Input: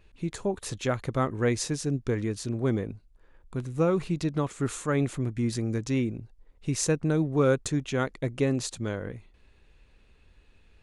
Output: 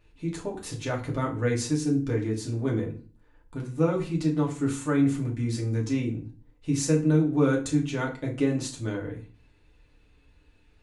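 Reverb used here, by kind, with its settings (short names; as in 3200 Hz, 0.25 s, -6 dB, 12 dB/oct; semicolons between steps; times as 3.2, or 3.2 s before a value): FDN reverb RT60 0.38 s, low-frequency decay 1.4×, high-frequency decay 0.85×, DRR -2 dB; gain -5 dB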